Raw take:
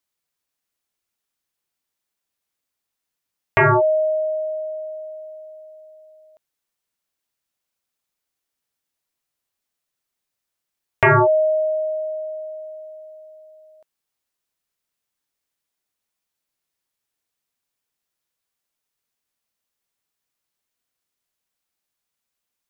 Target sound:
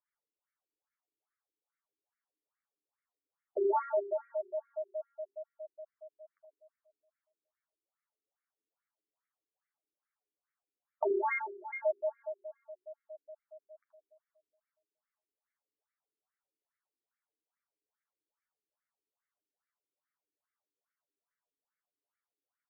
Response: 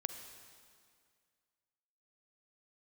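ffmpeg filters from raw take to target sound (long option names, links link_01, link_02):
-filter_complex "[0:a]acompressor=threshold=-24dB:ratio=3,flanger=delay=9:depth=1.2:regen=21:speed=0.12:shape=triangular,asplit=3[link_01][link_02][link_03];[link_01]afade=type=out:start_time=11.12:duration=0.02[link_04];[link_02]aeval=exprs='val(0)*sin(2*PI*1500*n/s)':channel_layout=same,afade=type=in:start_time=11.12:duration=0.02,afade=type=out:start_time=11.69:duration=0.02[link_05];[link_03]afade=type=in:start_time=11.69:duration=0.02[link_06];[link_04][link_05][link_06]amix=inputs=3:normalize=0,aecho=1:1:85:0.299,asplit=2[link_07][link_08];[1:a]atrim=start_sample=2205,highshelf=frequency=2200:gain=-9.5,adelay=78[link_09];[link_08][link_09]afir=irnorm=-1:irlink=0,volume=-3dB[link_10];[link_07][link_10]amix=inputs=2:normalize=0,afftfilt=real='re*between(b*sr/1024,310*pow(1700/310,0.5+0.5*sin(2*PI*2.4*pts/sr))/1.41,310*pow(1700/310,0.5+0.5*sin(2*PI*2.4*pts/sr))*1.41)':imag='im*between(b*sr/1024,310*pow(1700/310,0.5+0.5*sin(2*PI*2.4*pts/sr))/1.41,310*pow(1700/310,0.5+0.5*sin(2*PI*2.4*pts/sr))*1.41)':win_size=1024:overlap=0.75,volume=1dB"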